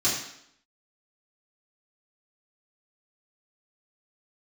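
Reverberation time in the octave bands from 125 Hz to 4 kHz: 0.60, 0.75, 0.70, 0.70, 0.70, 0.70 seconds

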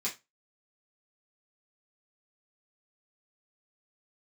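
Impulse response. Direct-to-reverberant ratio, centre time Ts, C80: −6.5 dB, 17 ms, 22.0 dB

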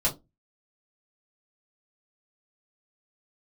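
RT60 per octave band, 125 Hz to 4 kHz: 0.35, 0.30, 0.25, 0.20, 0.15, 0.15 seconds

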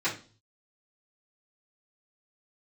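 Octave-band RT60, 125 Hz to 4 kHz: 0.80, 0.45, 0.40, 0.35, 0.35, 0.40 seconds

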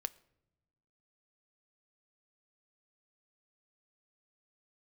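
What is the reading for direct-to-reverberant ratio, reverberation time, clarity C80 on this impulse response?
13.0 dB, non-exponential decay, 24.0 dB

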